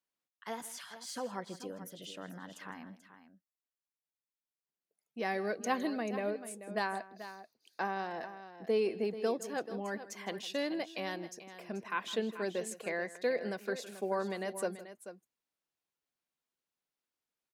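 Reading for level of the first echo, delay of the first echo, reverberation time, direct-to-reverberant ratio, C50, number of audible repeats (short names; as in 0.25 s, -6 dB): -17.5 dB, 0.159 s, none, none, none, 2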